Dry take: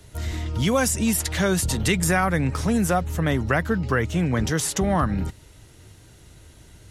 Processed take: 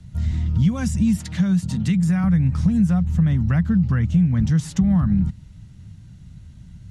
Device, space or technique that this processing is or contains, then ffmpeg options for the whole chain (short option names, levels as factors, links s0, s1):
jukebox: -filter_complex "[0:a]lowpass=7600,lowshelf=f=270:t=q:w=3:g=13,acompressor=threshold=0.447:ratio=4,asettb=1/sr,asplit=3[s0][s1][s2];[s0]atrim=end=1.174[s3];[s1]atrim=start=1.17:end=2.24,asetpts=PTS-STARTPTS,afade=t=in:d=0.004:c=qsin,afade=t=out:st=1.066:d=0.004:c=qsin,highpass=140[s4];[s2]atrim=start=2.236[s5];[s3][s4]acrossfade=d=0.004:c1=hsin:c2=qsin[s6];[s6][s5]acrossfade=d=0.004:c1=qsin:c2=hsin,volume=0.422"